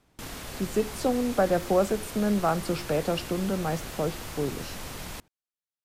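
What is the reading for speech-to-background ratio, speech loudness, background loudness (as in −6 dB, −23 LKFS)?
10.5 dB, −28.0 LKFS, −38.5 LKFS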